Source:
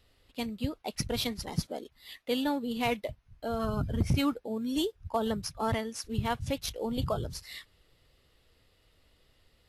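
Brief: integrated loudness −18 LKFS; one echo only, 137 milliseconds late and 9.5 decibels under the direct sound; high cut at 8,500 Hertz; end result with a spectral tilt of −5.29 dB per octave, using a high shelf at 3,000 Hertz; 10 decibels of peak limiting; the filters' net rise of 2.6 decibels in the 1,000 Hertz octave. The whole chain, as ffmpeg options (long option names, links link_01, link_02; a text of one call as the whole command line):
ffmpeg -i in.wav -af "lowpass=8500,equalizer=frequency=1000:width_type=o:gain=4,highshelf=frequency=3000:gain=-5.5,alimiter=level_in=2.5dB:limit=-24dB:level=0:latency=1,volume=-2.5dB,aecho=1:1:137:0.335,volume=18dB" out.wav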